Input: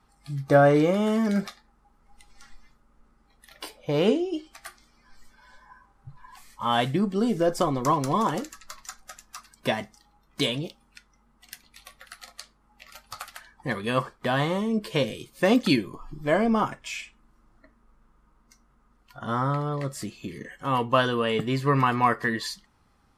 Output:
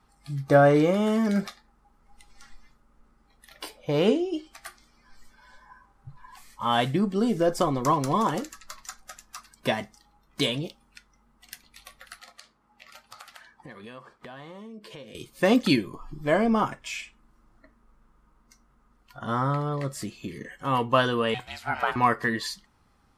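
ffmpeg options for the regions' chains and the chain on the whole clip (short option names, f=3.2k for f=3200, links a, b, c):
-filter_complex "[0:a]asettb=1/sr,asplit=3[a][b][c];[a]atrim=end=12.194[d];[b]atrim=start=12.19:end=15.15,asetpts=PTS-STARTPTS,afade=t=in:d=0.004:c=qsin,afade=t=out:st=2.956:d=0.004:c=qsin,highpass=f=160:p=1,highshelf=f=8.3k:g=-9,acompressor=threshold=-41dB:ratio=6:attack=3.2:release=140:knee=1:detection=peak[e];[c]atrim=start=15.146[f];[d][e]acrossfade=d=0.004:c1=hsin:c2=qsin[g];[g][f]acrossfade=d=0.004:c1=qsin:c2=hsin,asettb=1/sr,asplit=3[h][i][j];[h]atrim=end=21.344[k];[i]atrim=start=21.34:end=21.96,asetpts=PTS-STARTPTS,afade=t=in:d=0.004:c=qsin,afade=t=out:st=0.616:d=0.004:c=qsin,highpass=f=530:w=0.5412,highpass=f=530:w=1.3066,aeval=exprs='val(0)*sin(2*PI*310*n/s)':c=same[l];[j]atrim=start=21.956[m];[k][l]acrossfade=d=0.004:c1=hsin:c2=qsin[n];[n][m]acrossfade=d=0.004:c1=qsin:c2=hsin"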